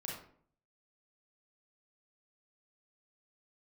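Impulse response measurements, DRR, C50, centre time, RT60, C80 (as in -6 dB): -3.5 dB, 1.5 dB, 48 ms, 0.55 s, 6.5 dB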